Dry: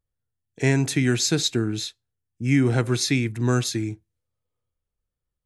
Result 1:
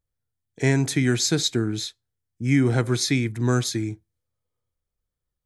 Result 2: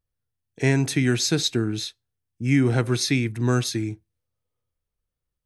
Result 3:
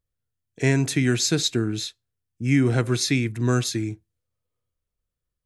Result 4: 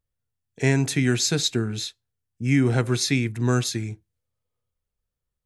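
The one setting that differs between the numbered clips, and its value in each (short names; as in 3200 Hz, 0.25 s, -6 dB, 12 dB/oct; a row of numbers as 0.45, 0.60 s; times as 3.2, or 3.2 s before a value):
notch, frequency: 2700, 7200, 840, 320 Hz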